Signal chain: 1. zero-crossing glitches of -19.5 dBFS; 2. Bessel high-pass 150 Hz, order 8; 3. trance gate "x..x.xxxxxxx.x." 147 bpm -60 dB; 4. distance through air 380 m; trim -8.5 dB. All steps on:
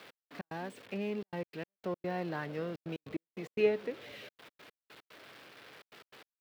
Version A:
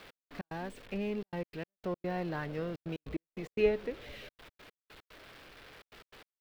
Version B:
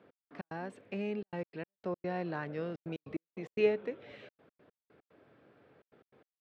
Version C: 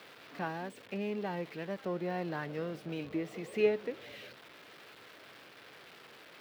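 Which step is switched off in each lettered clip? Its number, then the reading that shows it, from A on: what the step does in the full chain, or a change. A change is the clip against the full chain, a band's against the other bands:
2, 125 Hz band +2.5 dB; 1, distortion -4 dB; 3, momentary loudness spread change -3 LU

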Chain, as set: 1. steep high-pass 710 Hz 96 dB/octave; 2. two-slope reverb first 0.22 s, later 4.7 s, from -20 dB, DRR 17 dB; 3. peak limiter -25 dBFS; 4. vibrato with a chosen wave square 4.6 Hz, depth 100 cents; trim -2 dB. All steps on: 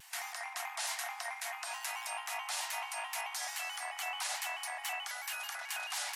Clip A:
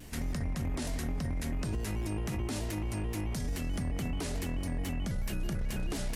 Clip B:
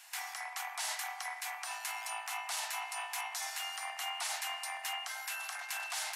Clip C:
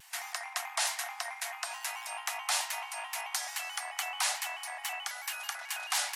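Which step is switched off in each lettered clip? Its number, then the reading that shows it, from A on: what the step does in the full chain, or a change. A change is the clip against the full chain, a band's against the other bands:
1, 500 Hz band +14.5 dB; 4, 500 Hz band -3.0 dB; 3, crest factor change +7.0 dB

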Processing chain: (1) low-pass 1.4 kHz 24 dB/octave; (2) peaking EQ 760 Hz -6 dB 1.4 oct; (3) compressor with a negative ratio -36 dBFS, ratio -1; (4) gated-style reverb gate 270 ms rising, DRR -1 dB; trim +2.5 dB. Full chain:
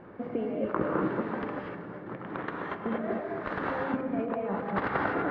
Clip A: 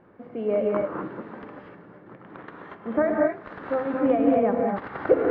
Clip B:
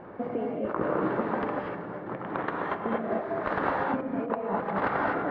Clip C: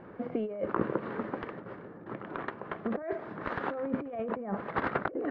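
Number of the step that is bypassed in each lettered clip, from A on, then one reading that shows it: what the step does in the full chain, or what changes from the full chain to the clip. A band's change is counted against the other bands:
3, momentary loudness spread change +12 LU; 2, 1 kHz band +3.0 dB; 4, crest factor change +3.0 dB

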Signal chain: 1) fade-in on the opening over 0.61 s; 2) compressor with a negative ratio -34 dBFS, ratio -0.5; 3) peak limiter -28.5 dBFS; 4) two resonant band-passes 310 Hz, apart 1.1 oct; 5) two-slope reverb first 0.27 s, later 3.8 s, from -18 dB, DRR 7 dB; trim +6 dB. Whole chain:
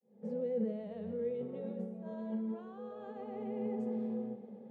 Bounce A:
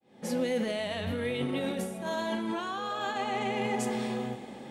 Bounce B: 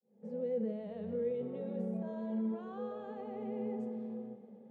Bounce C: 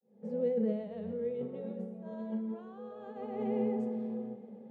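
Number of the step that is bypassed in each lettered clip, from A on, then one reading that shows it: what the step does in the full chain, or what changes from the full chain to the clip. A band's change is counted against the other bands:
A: 4, 2 kHz band +19.0 dB; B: 2, crest factor change -1.5 dB; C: 3, mean gain reduction 1.5 dB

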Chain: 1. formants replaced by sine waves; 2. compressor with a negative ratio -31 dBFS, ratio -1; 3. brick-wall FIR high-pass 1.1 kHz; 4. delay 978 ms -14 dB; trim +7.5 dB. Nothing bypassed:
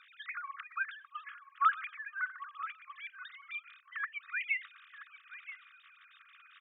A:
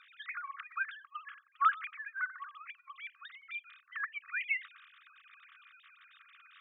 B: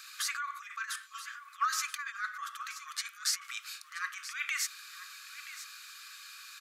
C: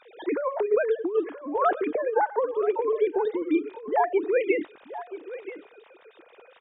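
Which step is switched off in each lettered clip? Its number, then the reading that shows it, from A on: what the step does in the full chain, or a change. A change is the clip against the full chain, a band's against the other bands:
4, momentary loudness spread change +5 LU; 1, crest factor change -3.0 dB; 3, crest factor change -8.0 dB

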